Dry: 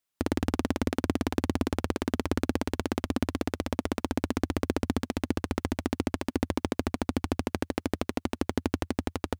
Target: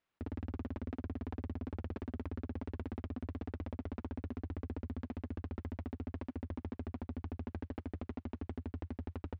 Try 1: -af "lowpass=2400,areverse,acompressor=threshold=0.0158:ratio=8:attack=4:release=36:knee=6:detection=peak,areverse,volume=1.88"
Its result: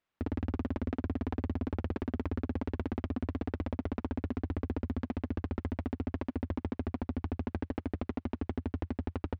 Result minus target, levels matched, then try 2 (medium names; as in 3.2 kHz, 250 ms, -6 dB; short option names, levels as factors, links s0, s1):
compression: peak gain reduction -8 dB
-af "lowpass=2400,areverse,acompressor=threshold=0.00562:ratio=8:attack=4:release=36:knee=6:detection=peak,areverse,volume=1.88"